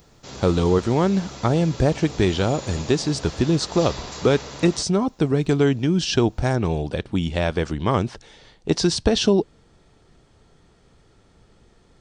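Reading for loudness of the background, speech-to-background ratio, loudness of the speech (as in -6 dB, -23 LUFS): -36.0 LUFS, 14.5 dB, -21.5 LUFS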